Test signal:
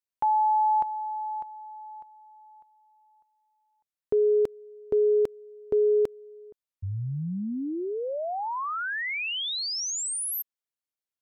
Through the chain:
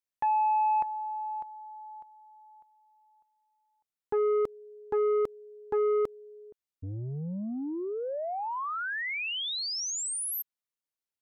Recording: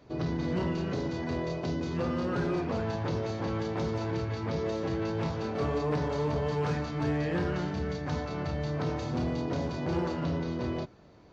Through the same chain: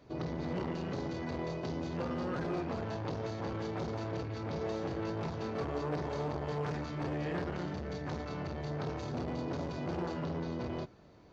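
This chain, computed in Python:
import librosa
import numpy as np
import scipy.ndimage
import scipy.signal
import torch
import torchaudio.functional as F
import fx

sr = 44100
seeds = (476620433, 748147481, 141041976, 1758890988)

y = fx.transformer_sat(x, sr, knee_hz=420.0)
y = y * librosa.db_to_amplitude(-2.5)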